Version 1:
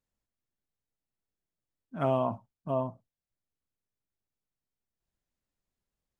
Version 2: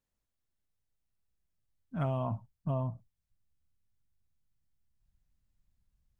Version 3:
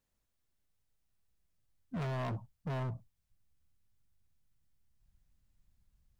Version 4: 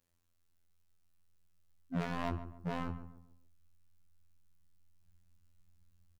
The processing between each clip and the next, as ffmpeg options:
-af "asubboost=boost=8.5:cutoff=140,acompressor=threshold=-29dB:ratio=6"
-af "asoftclip=type=hard:threshold=-38dB,volume=3.5dB"
-filter_complex "[0:a]afftfilt=real='hypot(re,im)*cos(PI*b)':imag='0':win_size=2048:overlap=0.75,asplit=2[a][b];[b]adelay=140,lowpass=f=1.3k:p=1,volume=-11dB,asplit=2[c][d];[d]adelay=140,lowpass=f=1.3k:p=1,volume=0.39,asplit=2[e][f];[f]adelay=140,lowpass=f=1.3k:p=1,volume=0.39,asplit=2[g][h];[h]adelay=140,lowpass=f=1.3k:p=1,volume=0.39[i];[c][e][g][i]amix=inputs=4:normalize=0[j];[a][j]amix=inputs=2:normalize=0,volume=5.5dB"

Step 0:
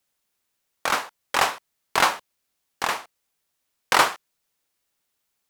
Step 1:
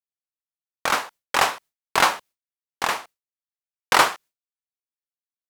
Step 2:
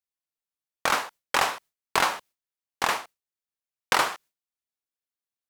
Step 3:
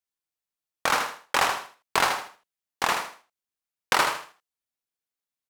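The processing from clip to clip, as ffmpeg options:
-af "agate=range=-33dB:threshold=-41dB:ratio=3:detection=peak,volume=1.5dB"
-af "acompressor=threshold=-18dB:ratio=6"
-af "aecho=1:1:80|160|240:0.473|0.123|0.032"

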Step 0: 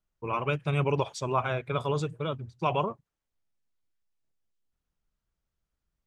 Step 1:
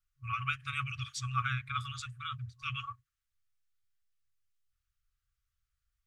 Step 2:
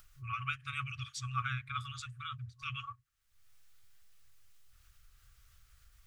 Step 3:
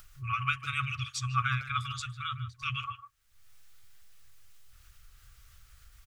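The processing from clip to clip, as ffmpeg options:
-af "afftfilt=real='re*(1-between(b*sr/4096,130,1100))':imag='im*(1-between(b*sr/4096,130,1100))':win_size=4096:overlap=0.75"
-af "acompressor=mode=upward:threshold=-38dB:ratio=2.5,volume=-3dB"
-filter_complex "[0:a]asplit=2[a][b];[b]adelay=150,highpass=300,lowpass=3.4k,asoftclip=type=hard:threshold=-31dB,volume=-12dB[c];[a][c]amix=inputs=2:normalize=0,volume=6.5dB"

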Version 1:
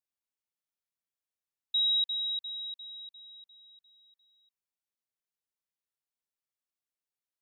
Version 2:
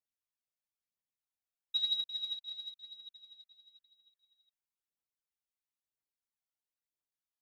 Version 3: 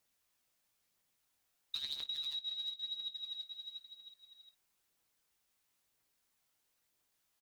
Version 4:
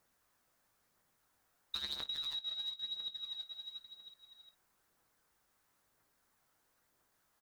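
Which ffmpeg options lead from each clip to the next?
-af "aphaser=in_gain=1:out_gain=1:delay=1.6:decay=0.59:speed=1:type=triangular,volume=-8dB"
-filter_complex "[0:a]afftfilt=real='re*lt(hypot(re,im),0.126)':imag='im*lt(hypot(re,im),0.126)':win_size=1024:overlap=0.75,acompressor=threshold=-53dB:ratio=5,asplit=2[a][b];[b]aecho=0:1:20|53:0.282|0.133[c];[a][c]amix=inputs=2:normalize=0,volume=14.5dB"
-af "highshelf=f=2k:t=q:w=1.5:g=-7,volume=8.5dB"

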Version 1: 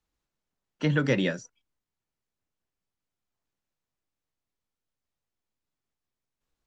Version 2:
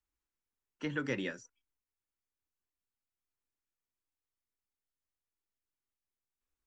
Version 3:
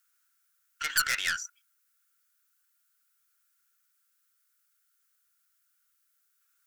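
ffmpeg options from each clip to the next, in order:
-af "equalizer=f=160:t=o:w=0.67:g=-12,equalizer=f=630:t=o:w=0.67:g=-8,equalizer=f=4k:t=o:w=0.67:g=-6,volume=-7dB"
-af "highpass=f=1.4k:t=q:w=10,aeval=exprs='(tanh(39.8*val(0)+0.4)-tanh(0.4))/39.8':c=same,crystalizer=i=9.5:c=0"

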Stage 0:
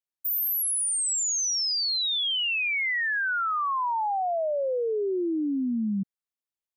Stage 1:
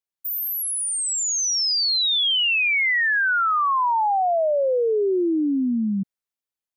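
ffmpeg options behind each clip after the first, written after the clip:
-af "dynaudnorm=f=570:g=5:m=6.5dB"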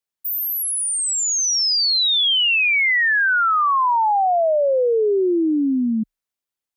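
-af "afreqshift=25,volume=3dB"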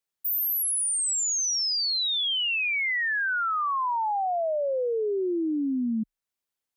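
-af "alimiter=limit=-23.5dB:level=0:latency=1:release=432"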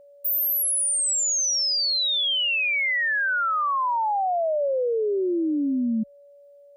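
-af "aeval=exprs='val(0)+0.00282*sin(2*PI*570*n/s)':c=same,volume=3dB"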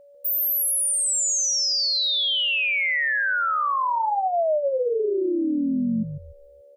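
-filter_complex "[0:a]asplit=5[a][b][c][d][e];[b]adelay=144,afreqshift=-72,volume=-9dB[f];[c]adelay=288,afreqshift=-144,volume=-19.2dB[g];[d]adelay=432,afreqshift=-216,volume=-29.3dB[h];[e]adelay=576,afreqshift=-288,volume=-39.5dB[i];[a][f][g][h][i]amix=inputs=5:normalize=0"

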